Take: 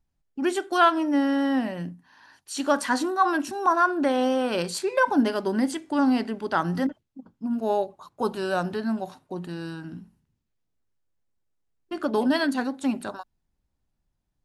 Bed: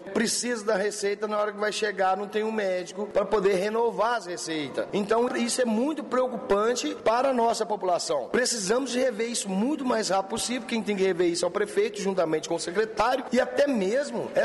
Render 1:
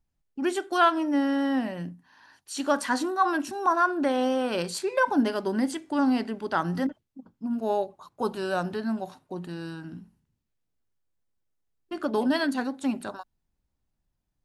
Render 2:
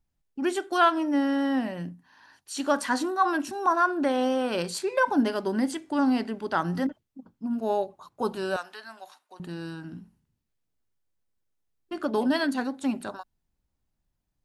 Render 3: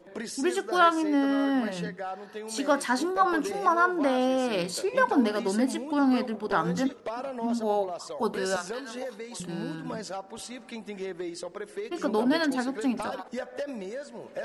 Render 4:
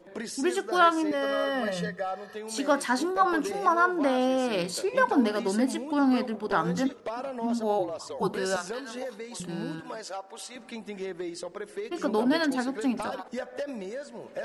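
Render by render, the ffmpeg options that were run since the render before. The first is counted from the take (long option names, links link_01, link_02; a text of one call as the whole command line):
ffmpeg -i in.wav -af "volume=-2dB" out.wav
ffmpeg -i in.wav -filter_complex "[0:a]asettb=1/sr,asplit=3[link_01][link_02][link_03];[link_01]atrim=end=8.564[link_04];[link_02]atrim=start=8.56:end=9.4,asetpts=PTS-STARTPTS,afade=type=in:duration=0.004:curve=qsin,afade=type=out:start_time=0.836:duration=0.004:curve=qsin,highpass=1100[link_05];[link_03]atrim=start=9.396[link_06];[link_04][link_05]acrossfade=duration=0.004:curve1=hsin:curve2=qsin[link_07];[link_07][link_06]acrossfade=duration=0.004:curve1=qsin:curve2=hsin" out.wav
ffmpeg -i in.wav -i bed.wav -filter_complex "[1:a]volume=-11.5dB[link_01];[0:a][link_01]amix=inputs=2:normalize=0" out.wav
ffmpeg -i in.wav -filter_complex "[0:a]asettb=1/sr,asplit=3[link_01][link_02][link_03];[link_01]atrim=end=1.114[link_04];[link_02]atrim=start=1.11:end=2.35,asetpts=PTS-STARTPTS,afade=type=in:duration=0.004:curve=qsin,afade=type=out:start_time=1.236:duration=0.004:curve=qsin,aecho=1:1:1.7:0.91,atrim=end_sample=54684[link_05];[link_03]atrim=start=2.346[link_06];[link_04][link_05]acrossfade=duration=0.004:curve1=hsin:curve2=qsin[link_07];[link_07][link_06]acrossfade=duration=0.004:curve1=qsin:curve2=hsin,asplit=3[link_08][link_09][link_10];[link_08]afade=type=out:start_time=7.78:duration=0.02[link_11];[link_09]afreqshift=-43,afade=type=in:start_time=7.78:duration=0.02,afade=type=out:start_time=8.28:duration=0.02[link_12];[link_10]afade=type=in:start_time=8.28:duration=0.02[link_13];[link_11][link_12][link_13]amix=inputs=3:normalize=0,asettb=1/sr,asplit=3[link_14][link_15][link_16];[link_14]atrim=end=9.804[link_17];[link_15]atrim=start=9.8:end=10.56,asetpts=PTS-STARTPTS,afade=type=in:duration=0.004:curve=qsin,afade=type=out:start_time=0.756:duration=0.004:curve=qsin,highpass=430[link_18];[link_16]atrim=start=10.556[link_19];[link_17][link_18]acrossfade=duration=0.004:curve1=hsin:curve2=qsin[link_20];[link_20][link_19]acrossfade=duration=0.004:curve1=qsin:curve2=hsin" out.wav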